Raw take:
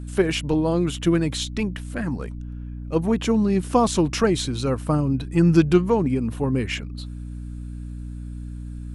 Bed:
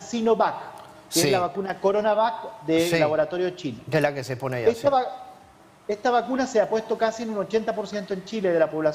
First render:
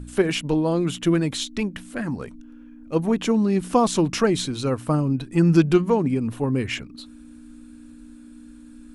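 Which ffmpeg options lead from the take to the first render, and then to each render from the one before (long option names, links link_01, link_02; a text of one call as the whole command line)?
ffmpeg -i in.wav -af "bandreject=frequency=60:width_type=h:width=4,bandreject=frequency=120:width_type=h:width=4,bandreject=frequency=180:width_type=h:width=4" out.wav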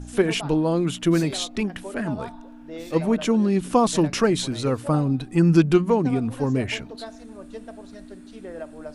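ffmpeg -i in.wav -i bed.wav -filter_complex "[1:a]volume=-15.5dB[link_01];[0:a][link_01]amix=inputs=2:normalize=0" out.wav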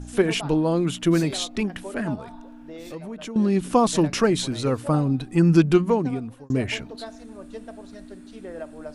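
ffmpeg -i in.wav -filter_complex "[0:a]asettb=1/sr,asplit=3[link_01][link_02][link_03];[link_01]atrim=end=2.154[link_04];[link_02]atrim=start=2.15:end=3.36,asetpts=PTS-STARTPTS,afade=type=in:duration=0.004:curve=qsin,afade=type=out:start_time=1.206:duration=0.004:curve=qsin,acompressor=threshold=-34dB:ratio=4:attack=3.2:release=140:knee=1:detection=peak[link_05];[link_03]atrim=start=3.356[link_06];[link_04][link_05]acrossfade=duration=0.004:curve1=hsin:curve2=qsin[link_07];[link_07][link_06]acrossfade=duration=0.004:curve1=qsin:curve2=hsin,asplit=2[link_08][link_09];[link_08]atrim=end=6.5,asetpts=PTS-STARTPTS,afade=type=out:start_time=5.87:duration=0.63[link_10];[link_09]atrim=start=6.5,asetpts=PTS-STARTPTS,afade=type=in:duration=0.004:curve=hsin[link_11];[link_10][link_11]concat=n=2:v=0:a=1" out.wav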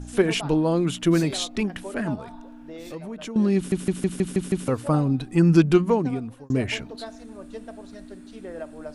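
ffmpeg -i in.wav -filter_complex "[0:a]asplit=8[link_01][link_02][link_03][link_04][link_05][link_06][link_07][link_08];[link_01]atrim=end=3.722[link_09];[link_02]atrim=start=3.558:end=3.722[link_10];[link_03]atrim=start=3.558:end=3.722[link_11];[link_04]atrim=start=3.558:end=3.722[link_12];[link_05]atrim=start=3.558:end=3.722[link_13];[link_06]atrim=start=3.558:end=3.722[link_14];[link_07]atrim=start=3.558:end=3.722[link_15];[link_08]atrim=start=4.678[link_16];[link_09][link_10]acrossfade=duration=0.004:curve1=hsin:curve2=hsin[link_17];[link_17][link_11]acrossfade=duration=0.004:curve1=hsin:curve2=hsin[link_18];[link_18][link_12]acrossfade=duration=0.004:curve1=hsin:curve2=hsin[link_19];[link_19][link_13]acrossfade=duration=0.004:curve1=hsin:curve2=hsin[link_20];[link_20][link_14]acrossfade=duration=0.004:curve1=hsin:curve2=hsin[link_21];[link_21][link_15]acrossfade=duration=0.004:curve1=hsin:curve2=hsin[link_22];[link_22][link_16]acrossfade=duration=0.004:curve1=hsin:curve2=hsin" out.wav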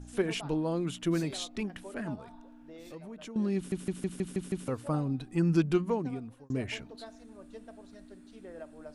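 ffmpeg -i in.wav -af "volume=-9.5dB" out.wav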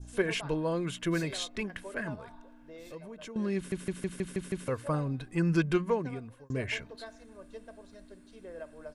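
ffmpeg -i in.wav -af "adynamicequalizer=threshold=0.00178:dfrequency=1800:dqfactor=1.4:tfrequency=1800:tqfactor=1.4:attack=5:release=100:ratio=0.375:range=3.5:mode=boostabove:tftype=bell,aecho=1:1:1.9:0.38" out.wav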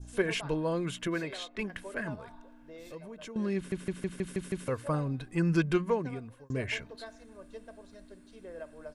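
ffmpeg -i in.wav -filter_complex "[0:a]asettb=1/sr,asplit=3[link_01][link_02][link_03];[link_01]atrim=end=1.074[link_04];[link_02]atrim=start=1.07:end=1.59,asetpts=PTS-STARTPTS,afade=type=in:duration=0.004:curve=qsin,afade=type=out:start_time=0.516:duration=0.004:curve=qsin,bass=frequency=250:gain=-9,treble=frequency=4000:gain=-11[link_05];[link_03]atrim=start=1.586[link_06];[link_04][link_05]acrossfade=duration=0.004:curve1=hsin:curve2=qsin[link_07];[link_07][link_06]acrossfade=duration=0.004:curve1=qsin:curve2=hsin,asettb=1/sr,asplit=3[link_08][link_09][link_10];[link_08]atrim=end=3.534[link_11];[link_09]atrim=start=3.53:end=4.24,asetpts=PTS-STARTPTS,afade=type=in:duration=0.004:curve=qsin,afade=type=out:start_time=0.706:duration=0.004:curve=qsin,highshelf=frequency=5900:gain=-6[link_12];[link_10]atrim=start=4.236[link_13];[link_11][link_12]acrossfade=duration=0.004:curve1=hsin:curve2=qsin[link_14];[link_14][link_13]acrossfade=duration=0.004:curve1=qsin:curve2=hsin" out.wav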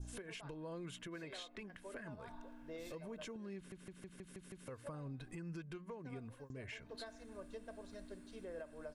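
ffmpeg -i in.wav -af "acompressor=threshold=-39dB:ratio=6,alimiter=level_in=14.5dB:limit=-24dB:level=0:latency=1:release=359,volume=-14.5dB" out.wav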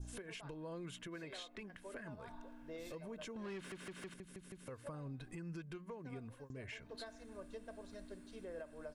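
ffmpeg -i in.wav -filter_complex "[0:a]asettb=1/sr,asplit=3[link_01][link_02][link_03];[link_01]atrim=end=3.364[link_04];[link_02]atrim=start=3.36:end=4.14,asetpts=PTS-STARTPTS,afade=type=in:duration=0.004:curve=qsin,afade=type=out:start_time=0.776:duration=0.004:curve=qsin,asplit=2[link_05][link_06];[link_06]highpass=frequency=720:poles=1,volume=21dB,asoftclip=type=tanh:threshold=-38dB[link_07];[link_05][link_07]amix=inputs=2:normalize=0,lowpass=frequency=3800:poles=1,volume=-6dB[link_08];[link_03]atrim=start=4.136[link_09];[link_04][link_08]acrossfade=duration=0.004:curve1=hsin:curve2=qsin[link_10];[link_10][link_09]acrossfade=duration=0.004:curve1=qsin:curve2=hsin" out.wav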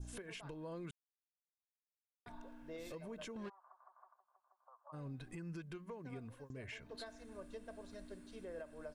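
ffmpeg -i in.wav -filter_complex "[0:a]asplit=3[link_01][link_02][link_03];[link_01]afade=type=out:start_time=3.48:duration=0.02[link_04];[link_02]asuperpass=centerf=900:order=8:qfactor=1.7,afade=type=in:start_time=3.48:duration=0.02,afade=type=out:start_time=4.92:duration=0.02[link_05];[link_03]afade=type=in:start_time=4.92:duration=0.02[link_06];[link_04][link_05][link_06]amix=inputs=3:normalize=0,asplit=3[link_07][link_08][link_09];[link_07]atrim=end=0.91,asetpts=PTS-STARTPTS,afade=type=out:start_time=0.906:duration=0.004:curve=hsin[link_10];[link_08]atrim=start=0.91:end=2.26,asetpts=PTS-STARTPTS,volume=0[link_11];[link_09]atrim=start=2.26,asetpts=PTS-STARTPTS,afade=type=in:duration=0.004:curve=hsin[link_12];[link_10][link_11][link_12]concat=n=3:v=0:a=1" out.wav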